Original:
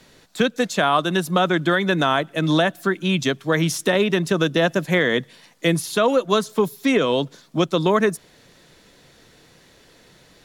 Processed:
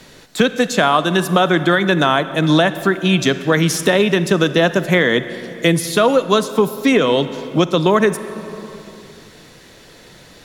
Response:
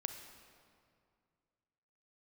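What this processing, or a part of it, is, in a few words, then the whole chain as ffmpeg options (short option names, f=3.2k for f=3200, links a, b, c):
ducked reverb: -filter_complex "[0:a]asplit=3[a][b][c];[1:a]atrim=start_sample=2205[d];[b][d]afir=irnorm=-1:irlink=0[e];[c]apad=whole_len=460668[f];[e][f]sidechaincompress=threshold=-22dB:ratio=3:attack=16:release=827,volume=7.5dB[g];[a][g]amix=inputs=2:normalize=0,volume=-1dB"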